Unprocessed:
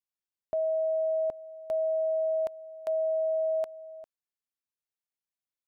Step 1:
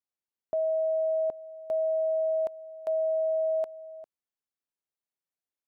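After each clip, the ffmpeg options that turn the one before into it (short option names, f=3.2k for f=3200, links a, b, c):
-af "equalizer=f=430:w=0.37:g=7,volume=-5.5dB"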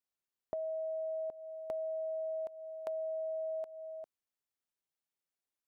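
-af "acompressor=threshold=-36dB:ratio=6,volume=-1dB"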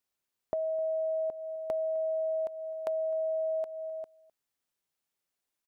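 -filter_complex "[0:a]asplit=2[a][b];[b]adelay=256.6,volume=-22dB,highshelf=f=4k:g=-5.77[c];[a][c]amix=inputs=2:normalize=0,volume=6dB"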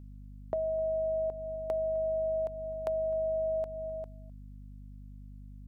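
-af "aeval=exprs='val(0)+0.00501*(sin(2*PI*50*n/s)+sin(2*PI*2*50*n/s)/2+sin(2*PI*3*50*n/s)/3+sin(2*PI*4*50*n/s)/4+sin(2*PI*5*50*n/s)/5)':c=same"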